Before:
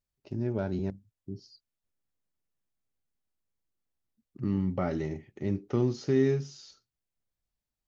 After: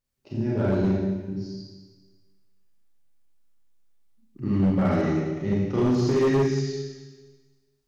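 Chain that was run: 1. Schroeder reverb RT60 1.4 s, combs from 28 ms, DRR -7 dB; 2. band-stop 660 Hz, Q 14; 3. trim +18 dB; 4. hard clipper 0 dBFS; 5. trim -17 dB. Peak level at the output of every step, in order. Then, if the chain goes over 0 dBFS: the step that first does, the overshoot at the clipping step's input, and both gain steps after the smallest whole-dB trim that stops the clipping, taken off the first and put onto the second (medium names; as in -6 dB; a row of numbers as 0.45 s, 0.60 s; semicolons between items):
-9.5 dBFS, -9.5 dBFS, +8.5 dBFS, 0.0 dBFS, -17.0 dBFS; step 3, 8.5 dB; step 3 +9 dB, step 5 -8 dB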